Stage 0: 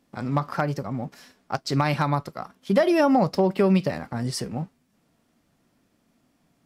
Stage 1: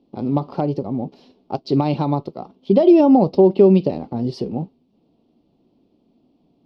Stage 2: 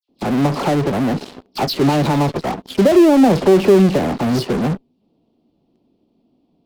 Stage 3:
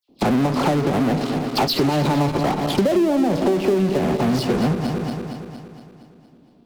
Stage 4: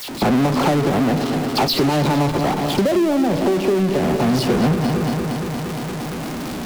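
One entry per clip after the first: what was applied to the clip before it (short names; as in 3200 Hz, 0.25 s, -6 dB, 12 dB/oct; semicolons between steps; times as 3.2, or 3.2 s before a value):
EQ curve 130 Hz 0 dB, 250 Hz +6 dB, 380 Hz +10 dB, 580 Hz +2 dB, 860 Hz +1 dB, 1700 Hz -22 dB, 2800 Hz -3 dB, 4400 Hz -3 dB, 7700 Hz -27 dB; gain +1.5 dB
dispersion lows, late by 90 ms, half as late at 2500 Hz; in parallel at -6.5 dB: fuzz box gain 41 dB, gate -50 dBFS; on the sum: gain -1 dB
regenerating reverse delay 0.116 s, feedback 74%, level -11 dB; compressor 5:1, threshold -24 dBFS, peak gain reduction 16.5 dB; gain +6.5 dB
zero-crossing step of -24.5 dBFS; vocal rider within 3 dB 2 s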